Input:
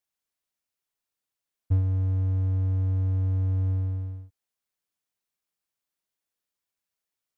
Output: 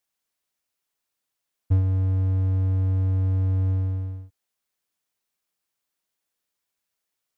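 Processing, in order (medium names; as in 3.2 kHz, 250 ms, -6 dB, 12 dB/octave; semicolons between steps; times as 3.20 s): bass shelf 180 Hz -3 dB; trim +5 dB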